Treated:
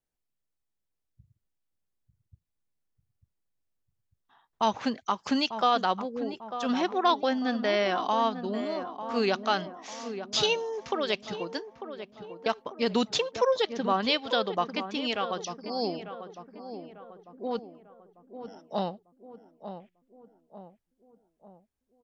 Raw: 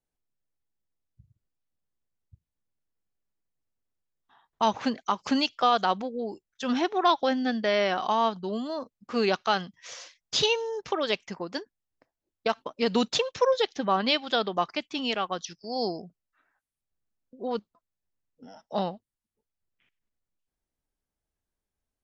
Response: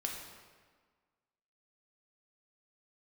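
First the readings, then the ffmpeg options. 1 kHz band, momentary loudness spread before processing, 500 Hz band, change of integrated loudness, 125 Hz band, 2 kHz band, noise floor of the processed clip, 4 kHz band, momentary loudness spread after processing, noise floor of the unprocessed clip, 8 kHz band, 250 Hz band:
−1.0 dB, 12 LU, −1.0 dB, −1.5 dB, −1.0 dB, −1.5 dB, −82 dBFS, −1.5 dB, 18 LU, below −85 dBFS, can't be measured, −1.0 dB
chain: -filter_complex "[0:a]asplit=2[link_01][link_02];[link_02]adelay=896,lowpass=frequency=1300:poles=1,volume=-9.5dB,asplit=2[link_03][link_04];[link_04]adelay=896,lowpass=frequency=1300:poles=1,volume=0.51,asplit=2[link_05][link_06];[link_06]adelay=896,lowpass=frequency=1300:poles=1,volume=0.51,asplit=2[link_07][link_08];[link_08]adelay=896,lowpass=frequency=1300:poles=1,volume=0.51,asplit=2[link_09][link_10];[link_10]adelay=896,lowpass=frequency=1300:poles=1,volume=0.51,asplit=2[link_11][link_12];[link_12]adelay=896,lowpass=frequency=1300:poles=1,volume=0.51[link_13];[link_01][link_03][link_05][link_07][link_09][link_11][link_13]amix=inputs=7:normalize=0,volume=-1.5dB"

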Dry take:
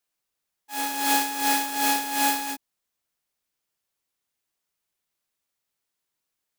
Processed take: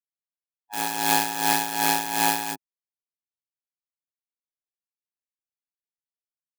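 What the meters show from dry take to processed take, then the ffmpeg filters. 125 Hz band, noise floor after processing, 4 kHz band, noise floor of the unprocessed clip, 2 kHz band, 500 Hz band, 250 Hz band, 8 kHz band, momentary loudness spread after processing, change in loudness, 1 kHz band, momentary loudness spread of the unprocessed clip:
can't be measured, below −85 dBFS, +1.0 dB, −83 dBFS, +1.0 dB, +4.5 dB, −1.0 dB, +0.5 dB, 11 LU, +0.5 dB, +0.5 dB, 11 LU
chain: -af "highpass=170,anlmdn=3.98,tremolo=f=110:d=0.974,volume=5dB"

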